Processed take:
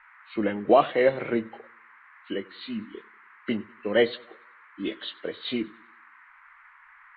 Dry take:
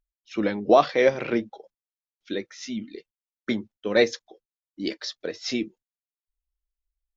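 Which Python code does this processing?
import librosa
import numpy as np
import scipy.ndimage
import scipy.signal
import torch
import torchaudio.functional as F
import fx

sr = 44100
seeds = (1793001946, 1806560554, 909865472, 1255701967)

y = fx.freq_compress(x, sr, knee_hz=1900.0, ratio=1.5)
y = fx.dmg_noise_band(y, sr, seeds[0], low_hz=980.0, high_hz=2100.0, level_db=-52.0)
y = fx.echo_warbled(y, sr, ms=96, feedback_pct=43, rate_hz=2.8, cents=52, wet_db=-23)
y = y * 10.0 ** (-1.5 / 20.0)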